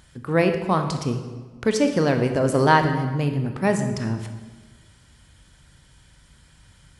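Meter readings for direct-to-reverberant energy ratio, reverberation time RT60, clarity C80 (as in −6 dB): 6.0 dB, 1.4 s, 9.5 dB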